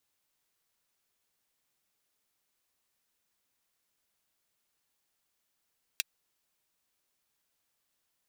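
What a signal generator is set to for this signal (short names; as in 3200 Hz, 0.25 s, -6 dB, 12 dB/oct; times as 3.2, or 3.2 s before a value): closed hi-hat, high-pass 2500 Hz, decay 0.03 s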